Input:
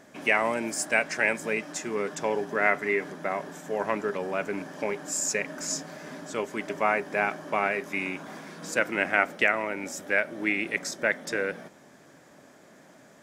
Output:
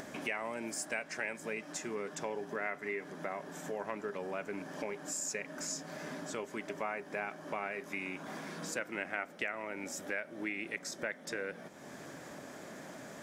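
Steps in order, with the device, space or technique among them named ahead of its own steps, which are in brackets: upward and downward compression (upward compressor, threshold -28 dBFS; compression 3:1, threshold -28 dBFS, peak gain reduction 9 dB); trim -7 dB

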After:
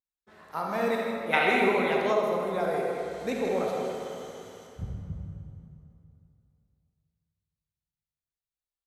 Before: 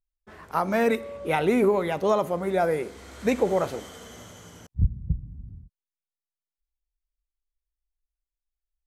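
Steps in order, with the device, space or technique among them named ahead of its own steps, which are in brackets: PA in a hall (high-pass 160 Hz 6 dB/octave; peaking EQ 3.9 kHz +5 dB 0.32 oct; delay 158 ms -8.5 dB; reverberation RT60 2.4 s, pre-delay 43 ms, DRR -1 dB); 1.32–2.12 s: peaking EQ 2.1 kHz +14 dB -> +7 dB 2.3 oct; plate-style reverb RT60 2.9 s, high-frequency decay 0.8×, DRR 10.5 dB; trim -8 dB

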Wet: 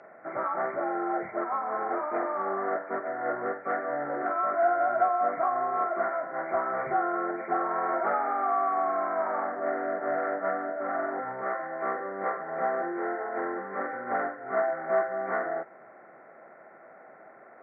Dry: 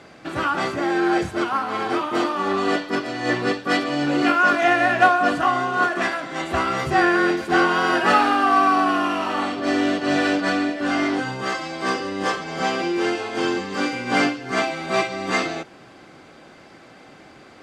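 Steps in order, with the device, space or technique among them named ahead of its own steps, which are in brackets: hearing aid with frequency lowering (knee-point frequency compression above 1.3 kHz 4:1; compression 3:1, threshold -20 dBFS, peak gain reduction 8.5 dB; cabinet simulation 290–6800 Hz, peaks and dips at 290 Hz -9 dB, 650 Hz +9 dB, 1.6 kHz -7 dB, 2.6 kHz +7 dB); trim -5.5 dB

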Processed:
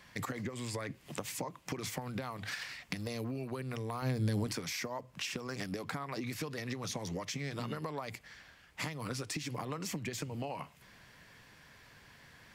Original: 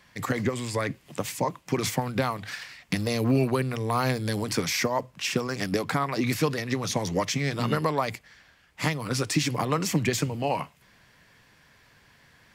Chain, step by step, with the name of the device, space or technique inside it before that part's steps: serial compression, leveller first (compression 2:1, threshold -30 dBFS, peak gain reduction 7 dB; compression, threshold -36 dBFS, peak gain reduction 11.5 dB); 4.02–4.47 s: bass shelf 320 Hz +10 dB

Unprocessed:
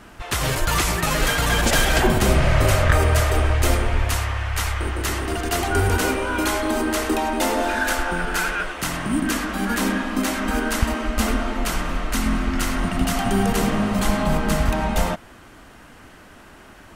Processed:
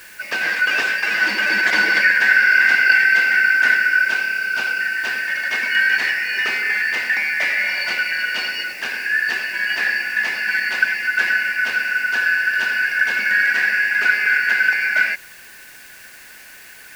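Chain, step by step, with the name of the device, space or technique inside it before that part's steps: split-band scrambled radio (four frequency bands reordered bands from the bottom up 3142; band-pass 320–2900 Hz; white noise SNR 26 dB); trim +3 dB

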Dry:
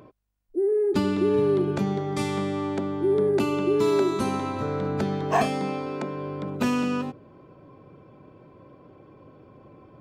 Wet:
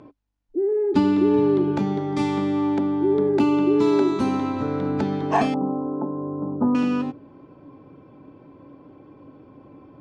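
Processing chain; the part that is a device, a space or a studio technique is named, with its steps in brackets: 5.54–6.75 s: steep low-pass 1.2 kHz 48 dB/octave; inside a cardboard box (low-pass 5.8 kHz 12 dB/octave; small resonant body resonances 280/860 Hz, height 11 dB, ringing for 70 ms)

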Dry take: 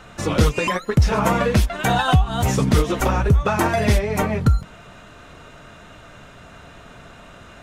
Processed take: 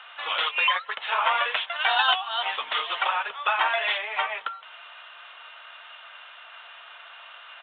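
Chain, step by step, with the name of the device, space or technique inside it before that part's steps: hum notches 50/100/150 Hz; musical greeting card (resampled via 8 kHz; high-pass 840 Hz 24 dB/octave; peaking EQ 3.1 kHz +8 dB 0.52 oct)

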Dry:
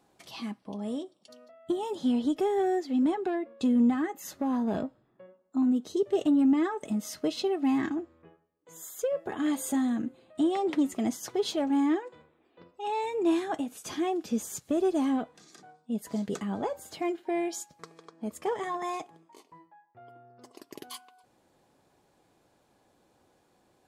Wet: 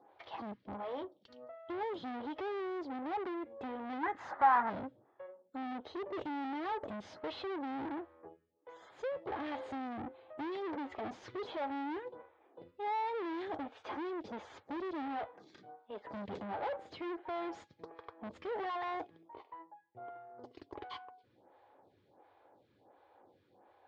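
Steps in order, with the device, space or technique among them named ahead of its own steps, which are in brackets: vibe pedal into a guitar amplifier (lamp-driven phase shifter 1.4 Hz; valve stage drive 44 dB, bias 0.65; cabinet simulation 90–3500 Hz, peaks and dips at 97 Hz +5 dB, 160 Hz -9 dB, 230 Hz -5 dB, 520 Hz +4 dB, 850 Hz +6 dB, 2.7 kHz -5 dB); 4.03–4.70 s: high-order bell 1.2 kHz +13 dB; trim +6 dB

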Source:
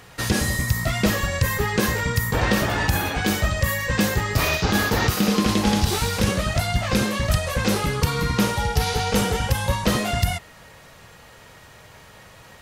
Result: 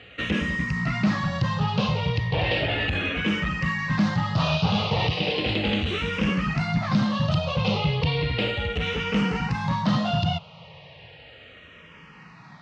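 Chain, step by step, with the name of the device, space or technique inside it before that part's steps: barber-pole phaser into a guitar amplifier (barber-pole phaser -0.35 Hz; saturation -19.5 dBFS, distortion -13 dB; cabinet simulation 81–4100 Hz, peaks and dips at 160 Hz +10 dB, 370 Hz -6 dB, 1.6 kHz -5 dB, 2.8 kHz +7 dB); trim +2.5 dB

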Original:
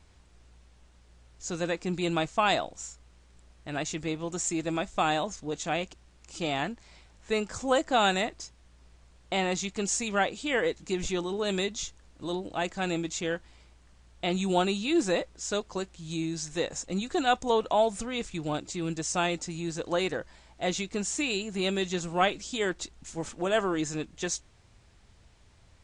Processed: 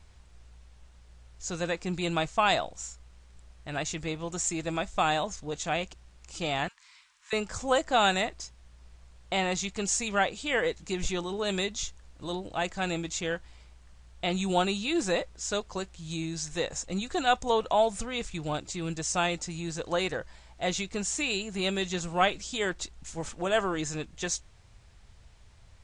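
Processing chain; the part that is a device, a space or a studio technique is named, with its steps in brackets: 6.68–7.33 s: elliptic high-pass 1 kHz, stop band 40 dB; low shelf boost with a cut just above (bass shelf 67 Hz +6 dB; peaking EQ 290 Hz -5.5 dB 1.1 oct); trim +1 dB

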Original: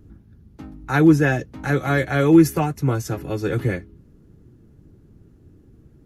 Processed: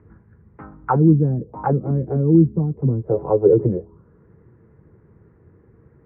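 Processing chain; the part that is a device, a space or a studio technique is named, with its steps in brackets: envelope filter bass rig (touch-sensitive low-pass 230–2000 Hz down, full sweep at -16.5 dBFS; cabinet simulation 71–2200 Hz, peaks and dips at 270 Hz -9 dB, 470 Hz +8 dB, 1 kHz +9 dB, 1.7 kHz -5 dB)

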